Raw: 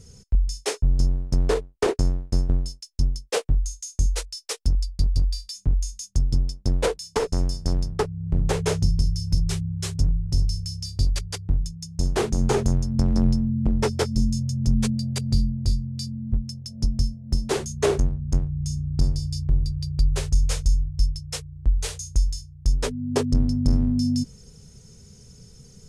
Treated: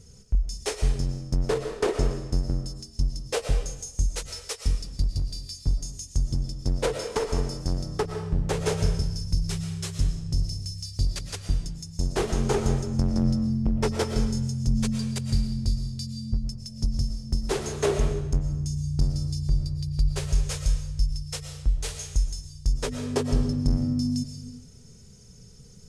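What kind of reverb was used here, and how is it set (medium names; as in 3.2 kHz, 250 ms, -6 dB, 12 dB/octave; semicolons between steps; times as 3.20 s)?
algorithmic reverb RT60 0.93 s, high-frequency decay 0.95×, pre-delay 75 ms, DRR 5.5 dB; trim -3 dB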